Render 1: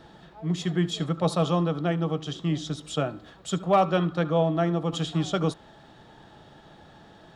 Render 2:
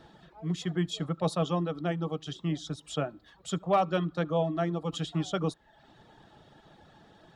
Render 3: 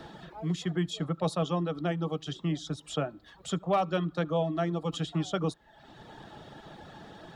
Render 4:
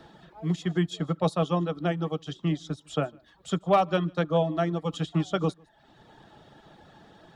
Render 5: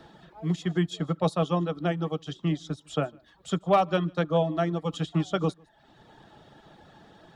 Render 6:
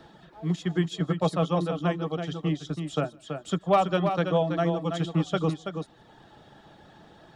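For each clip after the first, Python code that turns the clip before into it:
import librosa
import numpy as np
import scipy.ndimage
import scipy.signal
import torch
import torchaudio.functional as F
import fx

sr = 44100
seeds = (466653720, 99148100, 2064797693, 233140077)

y1 = fx.dereverb_blind(x, sr, rt60_s=0.63)
y1 = F.gain(torch.from_numpy(y1), -4.0).numpy()
y2 = fx.band_squash(y1, sr, depth_pct=40)
y3 = y2 + 10.0 ** (-21.5 / 20.0) * np.pad(y2, (int(153 * sr / 1000.0), 0))[:len(y2)]
y3 = fx.upward_expand(y3, sr, threshold_db=-45.0, expansion=1.5)
y3 = F.gain(torch.from_numpy(y3), 6.0).numpy()
y4 = y3
y5 = y4 + 10.0 ** (-7.0 / 20.0) * np.pad(y4, (int(329 * sr / 1000.0), 0))[:len(y4)]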